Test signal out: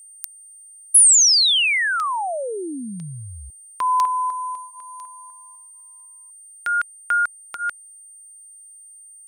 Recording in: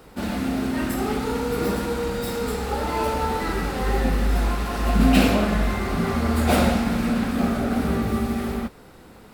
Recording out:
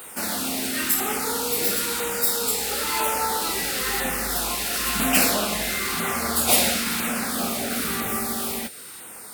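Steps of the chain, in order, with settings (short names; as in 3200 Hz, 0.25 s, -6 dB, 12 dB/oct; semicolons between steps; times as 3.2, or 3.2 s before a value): LFO notch saw down 1 Hz 520–5600 Hz; tilt +4.5 dB/oct; in parallel at -1.5 dB: compressor, threshold -33 dBFS; on the sum: whine 8800 Hz -41 dBFS; gain -1 dB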